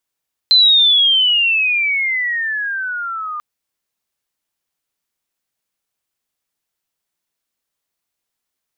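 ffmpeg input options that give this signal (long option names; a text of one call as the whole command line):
ffmpeg -f lavfi -i "aevalsrc='pow(10,(-6.5-16*t/2.89)/20)*sin(2*PI*4100*2.89/log(1200/4100)*(exp(log(1200/4100)*t/2.89)-1))':duration=2.89:sample_rate=44100" out.wav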